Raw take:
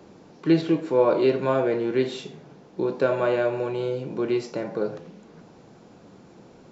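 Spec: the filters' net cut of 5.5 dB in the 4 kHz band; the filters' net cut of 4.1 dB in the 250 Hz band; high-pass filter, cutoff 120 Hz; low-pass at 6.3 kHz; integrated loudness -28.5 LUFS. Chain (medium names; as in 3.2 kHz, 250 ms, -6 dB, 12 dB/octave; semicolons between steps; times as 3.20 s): high-pass 120 Hz; low-pass 6.3 kHz; peaking EQ 250 Hz -6.5 dB; peaking EQ 4 kHz -6.5 dB; trim -2 dB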